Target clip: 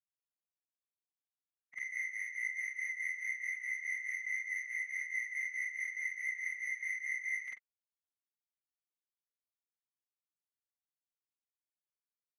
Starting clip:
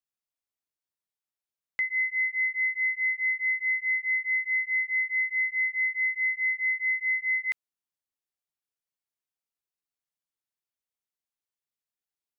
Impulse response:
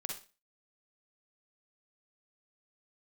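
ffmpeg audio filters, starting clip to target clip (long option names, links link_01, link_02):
-af "afftfilt=real='re':imag='-im':win_size=4096:overlap=0.75,adynamicsmooth=sensitivity=8:basefreq=2000,afftfilt=real='hypot(re,im)*cos(2*PI*random(0))':imag='hypot(re,im)*sin(2*PI*random(1))':win_size=512:overlap=0.75,volume=-2.5dB"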